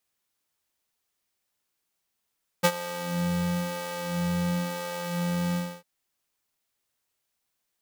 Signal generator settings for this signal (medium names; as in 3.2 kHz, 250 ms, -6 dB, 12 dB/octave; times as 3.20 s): synth patch with filter wobble F3, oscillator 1 square, oscillator 2 saw, interval -12 st, oscillator 2 level -10 dB, noise -14 dB, filter highpass, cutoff 160 Hz, Q 0.97, filter envelope 1 oct, attack 20 ms, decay 0.06 s, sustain -16 dB, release 0.28 s, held 2.92 s, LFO 1 Hz, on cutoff 1.2 oct